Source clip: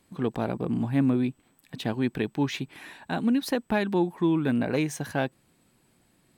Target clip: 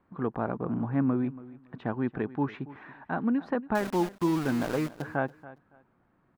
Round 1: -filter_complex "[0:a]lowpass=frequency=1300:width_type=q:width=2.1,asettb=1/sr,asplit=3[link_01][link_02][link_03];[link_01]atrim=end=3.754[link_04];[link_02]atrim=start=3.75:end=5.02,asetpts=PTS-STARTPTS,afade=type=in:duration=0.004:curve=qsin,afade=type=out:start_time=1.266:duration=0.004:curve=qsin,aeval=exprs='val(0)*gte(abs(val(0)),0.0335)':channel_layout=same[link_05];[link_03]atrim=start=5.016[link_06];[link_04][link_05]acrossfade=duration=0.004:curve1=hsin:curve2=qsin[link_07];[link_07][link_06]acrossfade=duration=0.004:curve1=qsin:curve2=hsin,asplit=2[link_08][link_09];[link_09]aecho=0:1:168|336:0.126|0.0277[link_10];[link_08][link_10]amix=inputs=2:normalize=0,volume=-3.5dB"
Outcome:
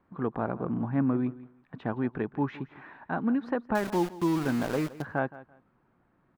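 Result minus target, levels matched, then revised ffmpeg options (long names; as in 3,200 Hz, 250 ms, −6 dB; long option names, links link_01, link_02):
echo 113 ms early
-filter_complex "[0:a]lowpass=frequency=1300:width_type=q:width=2.1,asettb=1/sr,asplit=3[link_01][link_02][link_03];[link_01]atrim=end=3.754[link_04];[link_02]atrim=start=3.75:end=5.02,asetpts=PTS-STARTPTS,afade=type=in:duration=0.004:curve=qsin,afade=type=out:start_time=1.266:duration=0.004:curve=qsin,aeval=exprs='val(0)*gte(abs(val(0)),0.0335)':channel_layout=same[link_05];[link_03]atrim=start=5.016[link_06];[link_04][link_05]acrossfade=duration=0.004:curve1=hsin:curve2=qsin[link_07];[link_07][link_06]acrossfade=duration=0.004:curve1=qsin:curve2=hsin,asplit=2[link_08][link_09];[link_09]aecho=0:1:281|562:0.126|0.0277[link_10];[link_08][link_10]amix=inputs=2:normalize=0,volume=-3.5dB"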